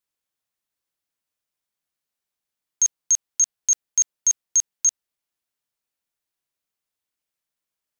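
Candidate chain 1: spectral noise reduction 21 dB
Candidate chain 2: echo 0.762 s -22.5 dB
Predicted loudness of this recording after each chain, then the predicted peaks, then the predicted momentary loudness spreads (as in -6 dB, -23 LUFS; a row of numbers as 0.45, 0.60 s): -20.5, -20.5 LUFS; -12.5, -12.5 dBFS; 3, 3 LU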